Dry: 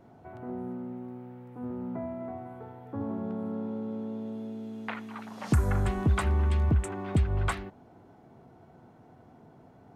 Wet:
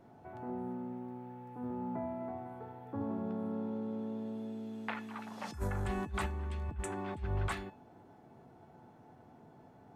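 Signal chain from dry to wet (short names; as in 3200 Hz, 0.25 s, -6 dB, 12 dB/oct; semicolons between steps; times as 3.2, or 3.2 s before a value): low shelf 68 Hz -6 dB; negative-ratio compressor -29 dBFS, ratio -0.5; resonator 870 Hz, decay 0.3 s, mix 80%; gain +8.5 dB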